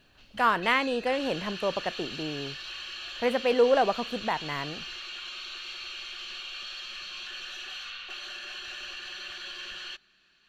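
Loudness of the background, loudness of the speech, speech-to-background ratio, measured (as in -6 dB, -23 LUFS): -37.5 LUFS, -27.5 LUFS, 10.0 dB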